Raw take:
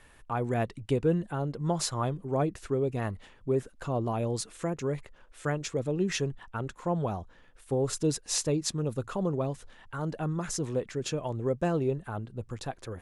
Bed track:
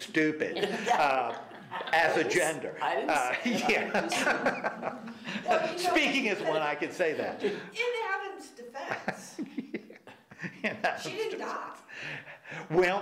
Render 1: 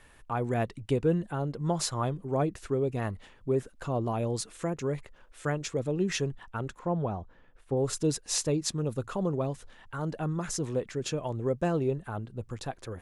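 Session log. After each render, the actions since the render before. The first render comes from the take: 6.79–7.77 s: low-pass 1.6 kHz 6 dB/octave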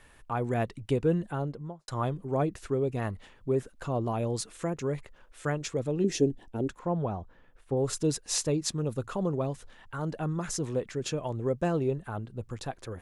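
1.35–1.88 s: studio fade out; 6.04–6.69 s: FFT filter 180 Hz 0 dB, 280 Hz +12 dB, 780 Hz -1 dB, 1.2 kHz -19 dB, 1.7 kHz -10 dB, 5.6 kHz 0 dB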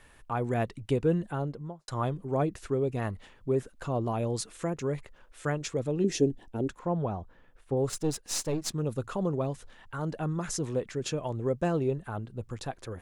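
7.89–8.74 s: partial rectifier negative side -7 dB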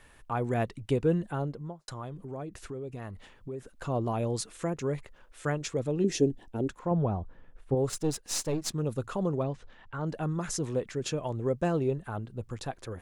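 1.90–3.70 s: compression 3:1, threshold -38 dBFS; 6.91–7.75 s: tilt EQ -1.5 dB/octave; 9.43–10.06 s: distance through air 130 m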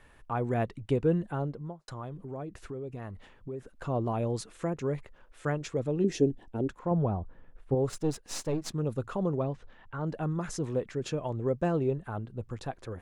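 treble shelf 3.5 kHz -8.5 dB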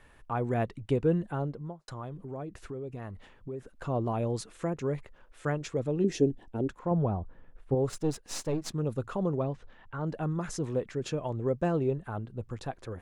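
no audible change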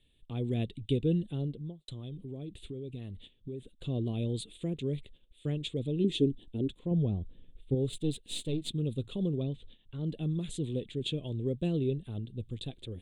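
gate -51 dBFS, range -10 dB; FFT filter 270 Hz 0 dB, 430 Hz -4 dB, 900 Hz -22 dB, 1.5 kHz -23 dB, 3.6 kHz +14 dB, 5.5 kHz -20 dB, 8.5 kHz +3 dB, 12 kHz -8 dB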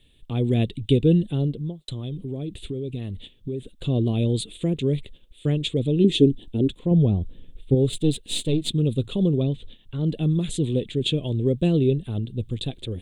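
trim +10.5 dB

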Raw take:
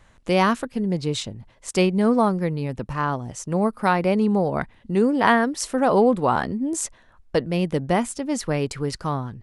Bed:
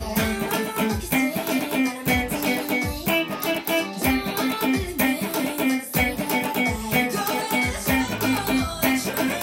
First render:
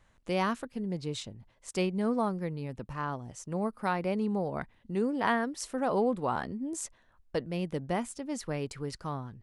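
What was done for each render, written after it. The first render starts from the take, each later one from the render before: trim -10.5 dB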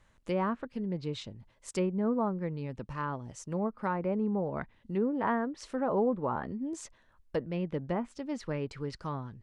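low-pass that closes with the level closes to 1.3 kHz, closed at -26.5 dBFS; band-stop 730 Hz, Q 12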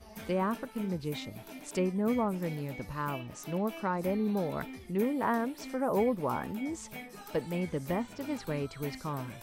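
add bed -23 dB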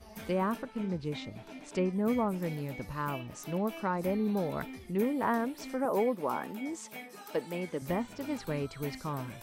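0.62–1.93 s: distance through air 73 m; 5.85–7.82 s: high-pass 240 Hz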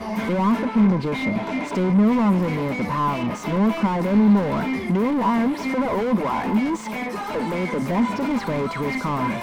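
overdrive pedal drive 37 dB, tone 1 kHz, clips at -17.5 dBFS; small resonant body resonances 210/1000/2100 Hz, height 12 dB, ringing for 50 ms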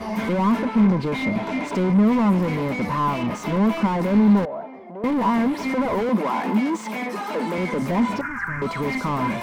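4.45–5.04 s: band-pass filter 640 Hz, Q 3.6; 6.09–7.58 s: steep high-pass 170 Hz; 8.21–8.62 s: FFT filter 140 Hz 0 dB, 210 Hz -17 dB, 310 Hz -12 dB, 520 Hz -23 dB, 900 Hz -9 dB, 1.6 kHz +14 dB, 3.8 kHz -30 dB, 5.6 kHz -10 dB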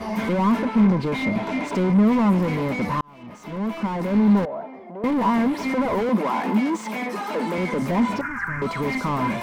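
3.01–4.48 s: fade in

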